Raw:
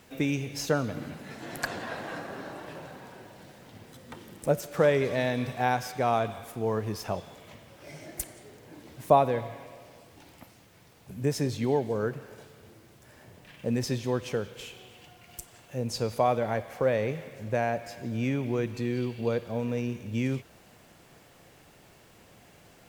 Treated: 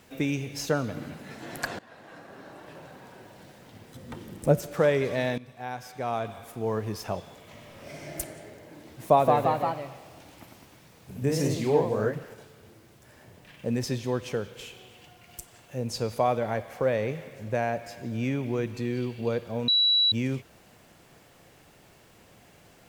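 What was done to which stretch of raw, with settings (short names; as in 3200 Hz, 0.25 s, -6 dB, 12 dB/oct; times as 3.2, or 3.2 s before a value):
1.79–3.37 fade in, from -18.5 dB
3.95–4.74 low shelf 400 Hz +8 dB
5.38–6.74 fade in, from -18 dB
7.49–8.17 reverb throw, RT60 2.7 s, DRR -3 dB
8.81–12.34 echoes that change speed 0.189 s, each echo +1 st, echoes 3
19.68–20.12 bleep 3920 Hz -18.5 dBFS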